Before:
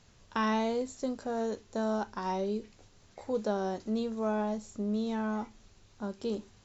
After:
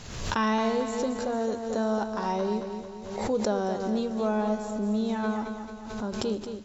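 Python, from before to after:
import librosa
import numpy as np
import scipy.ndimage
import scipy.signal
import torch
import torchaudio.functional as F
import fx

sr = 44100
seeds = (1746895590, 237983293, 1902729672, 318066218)

y = fx.echo_feedback(x, sr, ms=222, feedback_pct=52, wet_db=-8)
y = fx.pre_swell(y, sr, db_per_s=53.0)
y = y * 10.0 ** (3.5 / 20.0)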